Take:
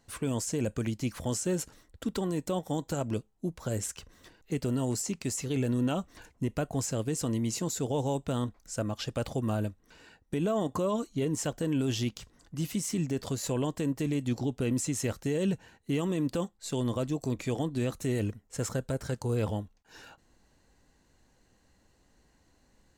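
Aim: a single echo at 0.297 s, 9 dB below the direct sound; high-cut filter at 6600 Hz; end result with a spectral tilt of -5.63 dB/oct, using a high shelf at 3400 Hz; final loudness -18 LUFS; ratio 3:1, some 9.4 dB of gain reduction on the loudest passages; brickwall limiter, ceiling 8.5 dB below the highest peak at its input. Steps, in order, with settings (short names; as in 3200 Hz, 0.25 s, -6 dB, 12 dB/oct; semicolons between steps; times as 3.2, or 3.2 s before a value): LPF 6600 Hz; high shelf 3400 Hz -3.5 dB; compressor 3:1, threshold -39 dBFS; limiter -34 dBFS; echo 0.297 s -9 dB; gain +25 dB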